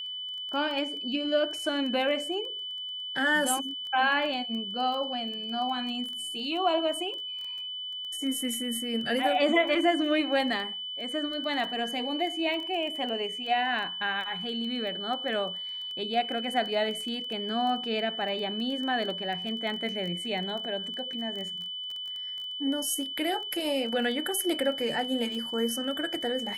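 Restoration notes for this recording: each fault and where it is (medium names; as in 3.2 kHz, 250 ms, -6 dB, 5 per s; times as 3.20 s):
crackle 12 per s -34 dBFS
whine 3 kHz -34 dBFS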